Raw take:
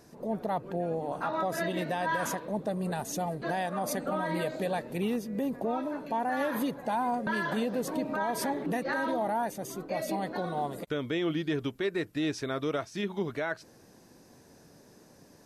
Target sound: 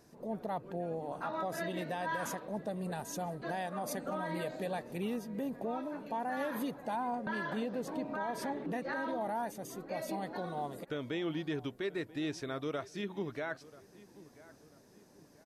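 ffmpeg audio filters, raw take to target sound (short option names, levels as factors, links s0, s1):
-filter_complex "[0:a]asettb=1/sr,asplit=3[s0][s1][s2];[s0]atrim=end=6.964[s3];[s1]atrim=start=6.96:end=9.21,asetpts=PTS-STARTPTS,afade=t=in:d=0.004:c=qsin,afade=t=out:st=2.246:d=0.004:c=qsin,highshelf=f=7300:g=-10[s4];[s2]atrim=start=9.206[s5];[s3][s4]acrossfade=d=0.004:c1=hsin:c2=qsin[s6];[s6][s5]acrossfade=d=0.004:c1=qsin:c2=hsin,asplit=2[s7][s8];[s8]adelay=987,lowpass=f=2400:p=1,volume=0.112,asplit=2[s9][s10];[s10]adelay=987,lowpass=f=2400:p=1,volume=0.43,asplit=2[s11][s12];[s12]adelay=987,lowpass=f=2400:p=1,volume=0.43[s13];[s7][s9][s11][s13]amix=inputs=4:normalize=0,volume=0.501"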